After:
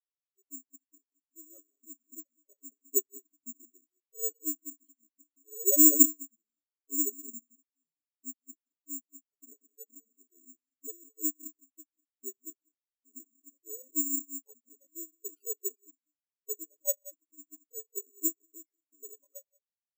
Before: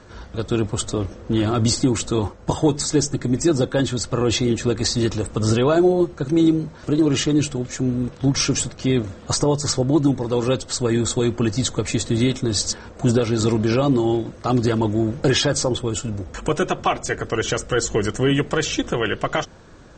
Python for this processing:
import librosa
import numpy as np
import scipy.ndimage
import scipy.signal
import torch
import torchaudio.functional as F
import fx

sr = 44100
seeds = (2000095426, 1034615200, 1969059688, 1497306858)

p1 = fx.pitch_ramps(x, sr, semitones=-9.5, every_ms=1359)
p2 = scipy.signal.sosfilt(scipy.signal.butter(4, 360.0, 'highpass', fs=sr, output='sos'), p1)
p3 = fx.tilt_eq(p2, sr, slope=-3.0)
p4 = p3 + 0.73 * np.pad(p3, (int(7.1 * sr / 1000.0), 0))[:len(p3)]
p5 = fx.rotary(p4, sr, hz=5.5)
p6 = fx.cheby_harmonics(p5, sr, harmonics=(4,), levels_db=(-17,), full_scale_db=-5.5)
p7 = 10.0 ** (-19.0 / 20.0) * (np.abs((p6 / 10.0 ** (-19.0 / 20.0) + 3.0) % 4.0 - 2.0) - 1.0)
p8 = p6 + F.gain(torch.from_numpy(p7), -5.0).numpy()
p9 = fx.rev_gated(p8, sr, seeds[0], gate_ms=240, shape='rising', drr_db=6.0)
p10 = (np.kron(scipy.signal.resample_poly(p9, 1, 6), np.eye(6)[0]) * 6)[:len(p9)]
p11 = fx.spectral_expand(p10, sr, expansion=4.0)
y = F.gain(torch.from_numpy(p11), -12.0).numpy()